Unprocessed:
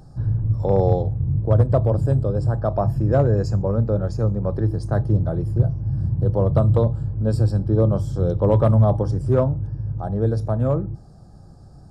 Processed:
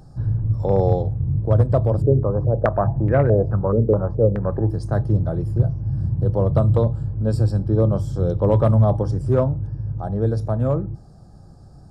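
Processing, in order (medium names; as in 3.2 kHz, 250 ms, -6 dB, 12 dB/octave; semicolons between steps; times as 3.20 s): 2.02–4.70 s: step-sequenced low-pass 4.7 Hz 410–2100 Hz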